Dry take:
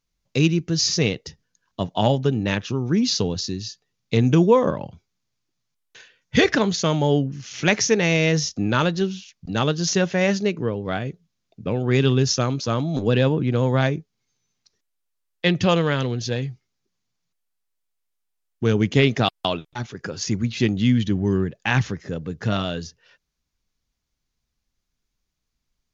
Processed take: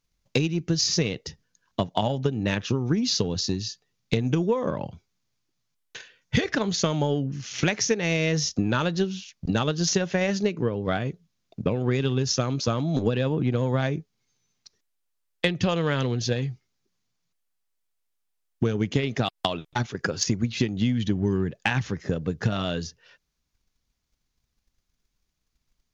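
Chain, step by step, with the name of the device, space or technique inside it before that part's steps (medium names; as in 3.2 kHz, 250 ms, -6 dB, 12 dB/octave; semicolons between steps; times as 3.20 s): drum-bus smash (transient shaper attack +8 dB, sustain +1 dB; compression 10:1, threshold -19 dBFS, peak gain reduction 15 dB; saturation -7.5 dBFS, distortion -26 dB)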